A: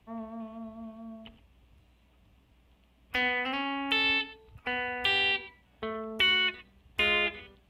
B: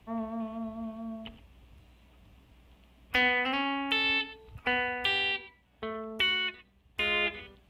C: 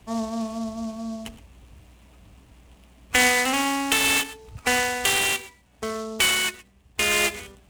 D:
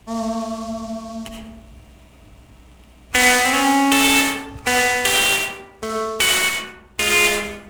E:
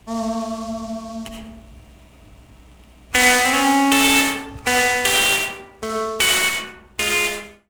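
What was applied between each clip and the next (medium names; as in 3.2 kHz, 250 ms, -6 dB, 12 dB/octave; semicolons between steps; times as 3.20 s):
gain riding within 5 dB 0.5 s
delay time shaken by noise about 5.1 kHz, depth 0.043 ms; trim +7 dB
algorithmic reverb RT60 0.89 s, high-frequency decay 0.4×, pre-delay 40 ms, DRR -0.5 dB; trim +2.5 dB
fade out at the end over 0.79 s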